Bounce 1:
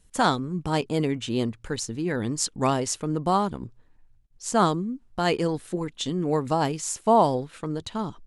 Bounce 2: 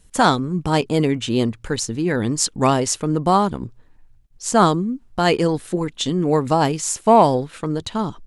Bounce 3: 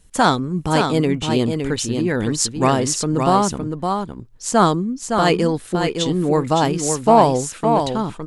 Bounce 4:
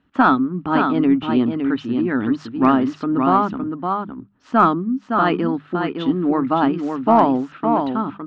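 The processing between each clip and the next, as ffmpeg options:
-af "acontrast=32,volume=1.19"
-af "aecho=1:1:563:0.531"
-af "highpass=120,equalizer=f=140:t=q:w=4:g=-8,equalizer=f=270:t=q:w=4:g=10,equalizer=f=490:t=q:w=4:g=-9,equalizer=f=1300:t=q:w=4:g=8,equalizer=f=2200:t=q:w=4:g=-5,lowpass=f=2800:w=0.5412,lowpass=f=2800:w=1.3066,bandreject=f=50:t=h:w=6,bandreject=f=100:t=h:w=6,bandreject=f=150:t=h:w=6,bandreject=f=200:t=h:w=6,aeval=exprs='1*(cos(1*acos(clip(val(0)/1,-1,1)))-cos(1*PI/2))+0.0447*(cos(4*acos(clip(val(0)/1,-1,1)))-cos(4*PI/2))+0.0316*(cos(6*acos(clip(val(0)/1,-1,1)))-cos(6*PI/2))+0.00891*(cos(8*acos(clip(val(0)/1,-1,1)))-cos(8*PI/2))':c=same,volume=0.841"

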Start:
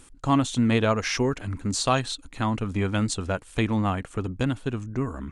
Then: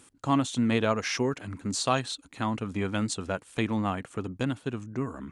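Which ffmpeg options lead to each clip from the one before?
-af "highpass=120,volume=0.708"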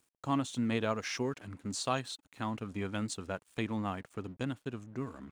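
-af "aeval=exprs='sgn(val(0))*max(abs(val(0))-0.002,0)':c=same,volume=0.473"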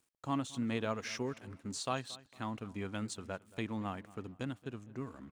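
-filter_complex "[0:a]asplit=2[s0][s1];[s1]adelay=227,lowpass=f=3100:p=1,volume=0.1,asplit=2[s2][s3];[s3]adelay=227,lowpass=f=3100:p=1,volume=0.41,asplit=2[s4][s5];[s5]adelay=227,lowpass=f=3100:p=1,volume=0.41[s6];[s0][s2][s4][s6]amix=inputs=4:normalize=0,volume=0.668"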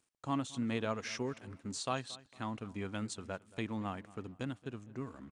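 -af "aresample=22050,aresample=44100"

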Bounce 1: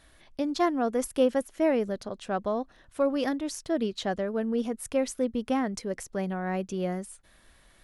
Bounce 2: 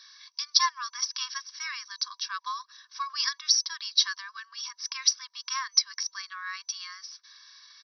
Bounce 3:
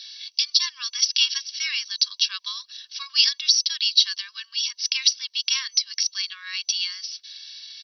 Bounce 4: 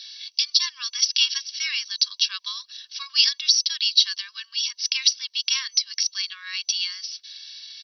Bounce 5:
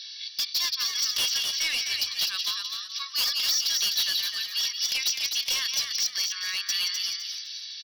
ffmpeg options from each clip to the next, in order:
-af "aexciter=amount=7.6:drive=7.8:freq=4300,afftfilt=real='re*between(b*sr/4096,970,6000)':imag='im*between(b*sr/4096,970,6000)':win_size=4096:overlap=0.75,aecho=1:1:1.8:0.68,volume=1.26"
-af "equalizer=f=4400:t=o:w=0.29:g=5.5,alimiter=limit=0.188:level=0:latency=1:release=195,highpass=f=2900:t=q:w=4.9,volume=1.78"
-af anull
-filter_complex "[0:a]asplit=2[s0][s1];[s1]aecho=0:1:174:0.316[s2];[s0][s2]amix=inputs=2:normalize=0,volume=14.1,asoftclip=hard,volume=0.0708,asplit=2[s3][s4];[s4]asplit=4[s5][s6][s7][s8];[s5]adelay=254,afreqshift=87,volume=0.562[s9];[s6]adelay=508,afreqshift=174,volume=0.18[s10];[s7]adelay=762,afreqshift=261,volume=0.0575[s11];[s8]adelay=1016,afreqshift=348,volume=0.0184[s12];[s9][s10][s11][s12]amix=inputs=4:normalize=0[s13];[s3][s13]amix=inputs=2:normalize=0"

